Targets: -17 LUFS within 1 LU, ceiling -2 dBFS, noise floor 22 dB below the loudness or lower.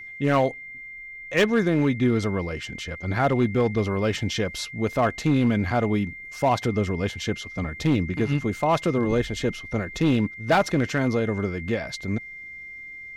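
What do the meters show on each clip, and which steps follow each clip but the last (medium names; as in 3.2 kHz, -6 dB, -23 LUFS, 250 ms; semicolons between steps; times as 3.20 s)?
clipped samples 0.7%; clipping level -13.5 dBFS; steady tone 2.1 kHz; tone level -37 dBFS; loudness -24.5 LUFS; peak level -13.5 dBFS; loudness target -17.0 LUFS
-> clip repair -13.5 dBFS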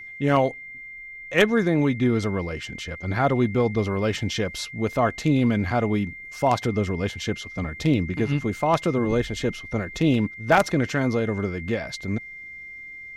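clipped samples 0.0%; steady tone 2.1 kHz; tone level -37 dBFS
-> band-stop 2.1 kHz, Q 30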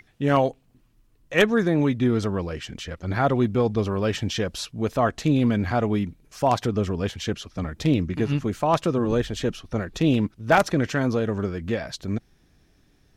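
steady tone not found; loudness -24.0 LUFS; peak level -4.5 dBFS; loudness target -17.0 LUFS
-> trim +7 dB; peak limiter -2 dBFS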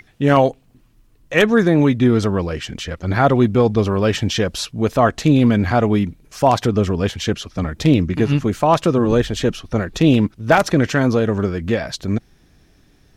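loudness -17.5 LUFS; peak level -2.0 dBFS; noise floor -54 dBFS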